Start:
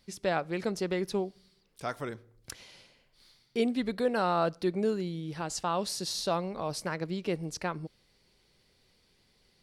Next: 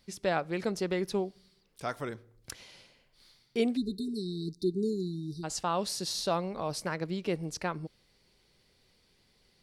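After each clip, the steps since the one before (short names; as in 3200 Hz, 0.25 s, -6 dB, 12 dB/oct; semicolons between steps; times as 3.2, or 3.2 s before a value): spectral delete 3.77–5.44, 450–3600 Hz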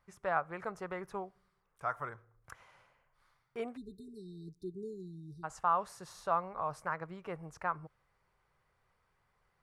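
EQ curve 140 Hz 0 dB, 220 Hz -10 dB, 310 Hz -9 dB, 1200 Hz +12 dB, 4400 Hz -18 dB, 6700 Hz -9 dB; gain -6.5 dB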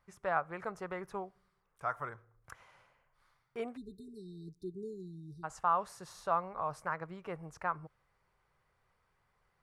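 nothing audible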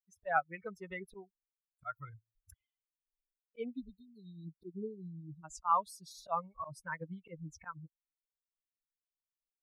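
per-bin expansion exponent 3; auto swell 0.129 s; gain +8 dB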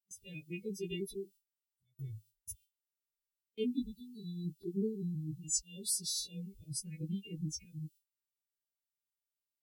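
frequency quantiser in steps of 2 st; Chebyshev band-stop 420–2600 Hz, order 5; gate with hold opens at -57 dBFS; gain +9.5 dB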